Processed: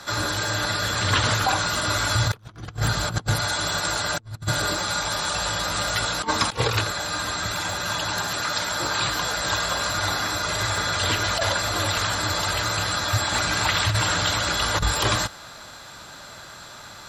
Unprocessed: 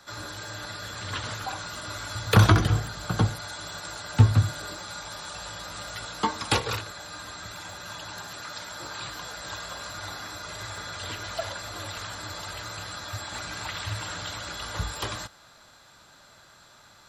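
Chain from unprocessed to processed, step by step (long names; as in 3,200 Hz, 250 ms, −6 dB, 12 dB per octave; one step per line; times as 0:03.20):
dynamic equaliser 120 Hz, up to +7 dB, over −43 dBFS, Q 6.4
asymmetric clip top −15 dBFS, bottom −8 dBFS
compressor whose output falls as the input rises −31 dBFS, ratio −0.5
level +8.5 dB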